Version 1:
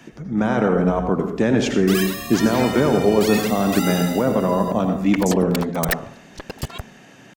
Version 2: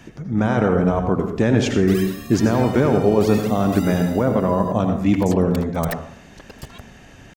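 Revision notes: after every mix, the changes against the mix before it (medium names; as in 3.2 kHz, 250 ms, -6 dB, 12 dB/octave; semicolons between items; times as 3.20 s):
speech: remove high-pass 140 Hz 24 dB/octave; second sound -8.5 dB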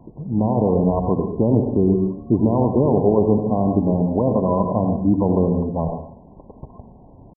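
master: add brick-wall FIR low-pass 1.1 kHz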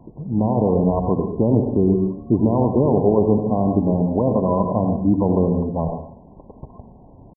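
no change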